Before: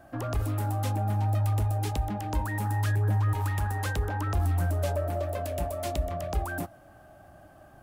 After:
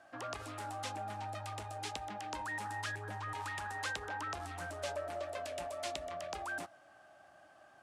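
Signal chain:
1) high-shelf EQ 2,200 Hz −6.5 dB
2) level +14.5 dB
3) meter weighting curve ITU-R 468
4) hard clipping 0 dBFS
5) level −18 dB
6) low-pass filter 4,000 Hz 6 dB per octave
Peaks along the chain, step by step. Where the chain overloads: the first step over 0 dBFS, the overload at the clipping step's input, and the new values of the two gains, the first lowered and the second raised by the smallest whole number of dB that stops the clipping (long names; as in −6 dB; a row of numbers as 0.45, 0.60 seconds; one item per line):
−18.5, −4.0, −2.0, −2.0, −20.0, −24.0 dBFS
no step passes full scale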